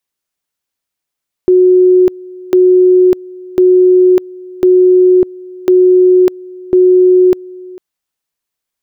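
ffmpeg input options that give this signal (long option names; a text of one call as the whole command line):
ffmpeg -f lavfi -i "aevalsrc='pow(10,(-3.5-23*gte(mod(t,1.05),0.6))/20)*sin(2*PI*366*t)':duration=6.3:sample_rate=44100" out.wav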